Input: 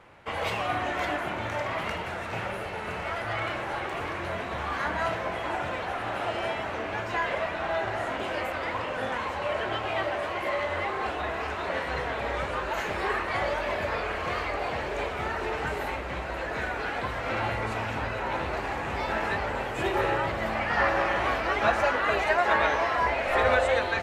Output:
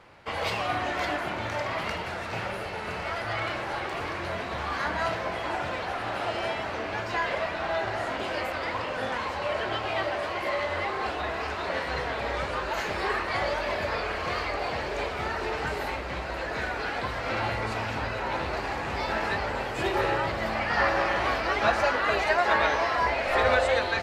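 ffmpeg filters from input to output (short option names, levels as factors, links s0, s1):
-af "equalizer=f=4700:t=o:w=0.56:g=7.5"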